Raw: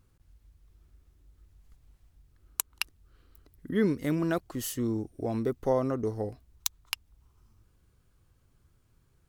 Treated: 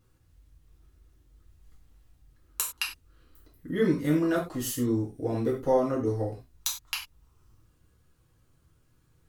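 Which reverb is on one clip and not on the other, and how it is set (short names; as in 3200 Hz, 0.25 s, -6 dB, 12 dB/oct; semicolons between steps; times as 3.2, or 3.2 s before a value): non-linear reverb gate 0.13 s falling, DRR -4.5 dB; gain -3.5 dB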